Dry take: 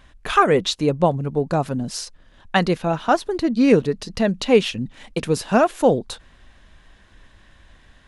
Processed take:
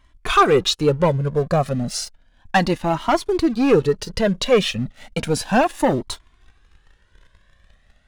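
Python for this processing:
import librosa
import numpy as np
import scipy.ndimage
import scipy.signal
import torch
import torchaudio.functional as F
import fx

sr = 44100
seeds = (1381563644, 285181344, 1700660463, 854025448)

y = fx.leveller(x, sr, passes=2)
y = fx.comb_cascade(y, sr, direction='rising', hz=0.33)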